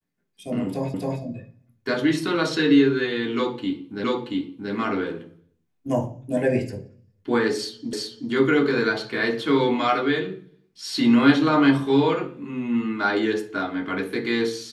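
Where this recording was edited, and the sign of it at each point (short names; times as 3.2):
0.94 repeat of the last 0.27 s
4.04 repeat of the last 0.68 s
7.93 repeat of the last 0.38 s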